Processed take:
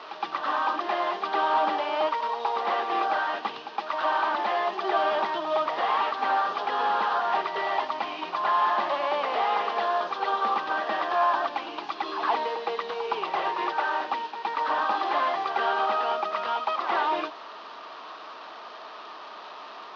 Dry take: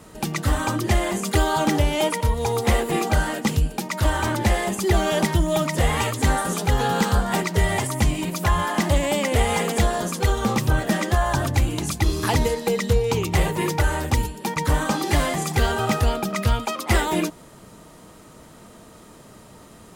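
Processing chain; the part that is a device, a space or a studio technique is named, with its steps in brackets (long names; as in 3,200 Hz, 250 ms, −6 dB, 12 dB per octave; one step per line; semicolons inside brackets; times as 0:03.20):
digital answering machine (band-pass filter 380–3,200 Hz; linear delta modulator 32 kbit/s, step −36 dBFS; loudspeaker in its box 500–4,400 Hz, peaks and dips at 510 Hz −7 dB, 730 Hz +3 dB, 1,100 Hz +7 dB, 2,100 Hz −7 dB)
backwards echo 115 ms −8.5 dB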